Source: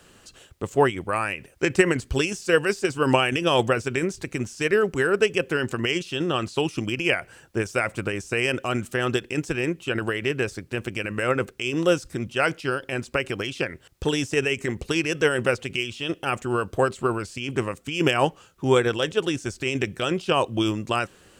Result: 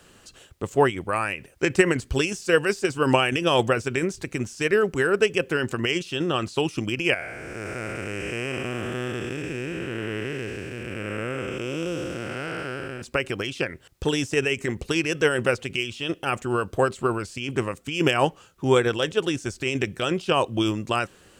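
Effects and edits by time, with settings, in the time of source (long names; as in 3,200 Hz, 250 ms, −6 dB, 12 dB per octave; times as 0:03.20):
0:07.14–0:13.02: spectrum smeared in time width 443 ms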